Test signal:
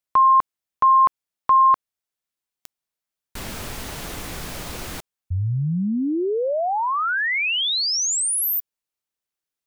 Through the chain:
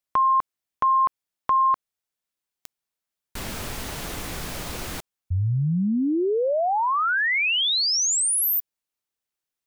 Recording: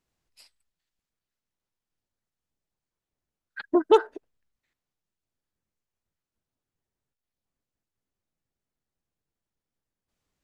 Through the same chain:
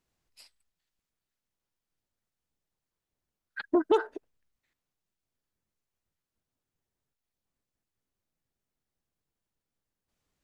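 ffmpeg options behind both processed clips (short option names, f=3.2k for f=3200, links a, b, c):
-af "acompressor=threshold=-18dB:ratio=4:attack=2.8:release=59:knee=1"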